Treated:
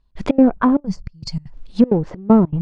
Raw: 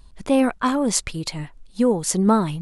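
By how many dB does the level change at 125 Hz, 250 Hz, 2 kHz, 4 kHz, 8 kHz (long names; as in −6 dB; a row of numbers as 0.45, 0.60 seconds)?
+4.5 dB, +5.5 dB, −3.0 dB, −6.0 dB, below −20 dB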